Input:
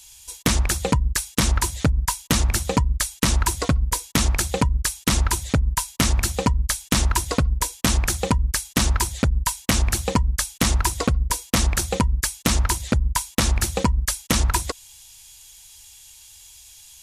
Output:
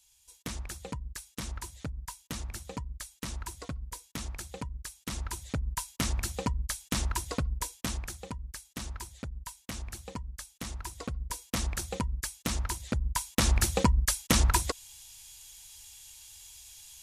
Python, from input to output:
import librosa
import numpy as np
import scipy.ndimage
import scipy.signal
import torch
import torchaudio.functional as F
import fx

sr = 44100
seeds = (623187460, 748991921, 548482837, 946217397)

y = fx.gain(x, sr, db=fx.line((4.96, -18.5), (5.78, -11.0), (7.68, -11.0), (8.23, -19.5), (10.77, -19.5), (11.46, -12.0), (12.81, -12.0), (13.57, -4.0)))